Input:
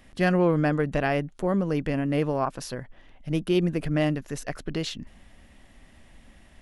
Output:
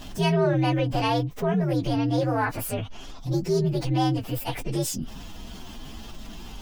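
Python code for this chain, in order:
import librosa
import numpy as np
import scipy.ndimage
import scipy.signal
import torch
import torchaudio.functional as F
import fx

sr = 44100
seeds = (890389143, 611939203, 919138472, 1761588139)

y = fx.partial_stretch(x, sr, pct=125)
y = fx.env_flatten(y, sr, amount_pct=50)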